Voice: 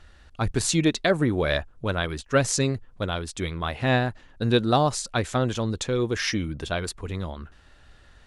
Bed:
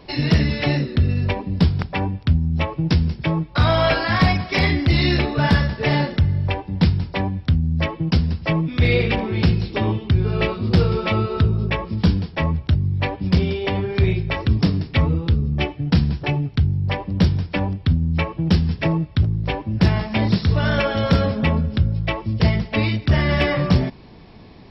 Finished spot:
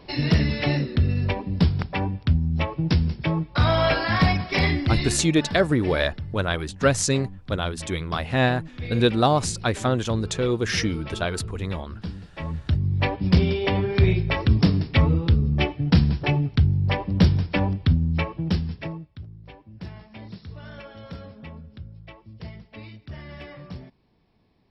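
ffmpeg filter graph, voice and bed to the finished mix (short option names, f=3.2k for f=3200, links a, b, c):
-filter_complex "[0:a]adelay=4500,volume=1.5dB[a];[1:a]volume=13dB,afade=t=out:st=4.68:d=0.58:silence=0.211349,afade=t=in:st=12.32:d=0.73:silence=0.158489,afade=t=out:st=17.78:d=1.33:silence=0.0891251[b];[a][b]amix=inputs=2:normalize=0"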